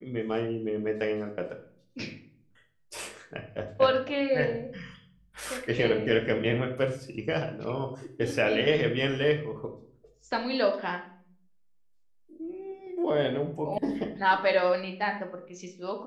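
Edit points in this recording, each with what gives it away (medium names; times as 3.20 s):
13.78 s: sound stops dead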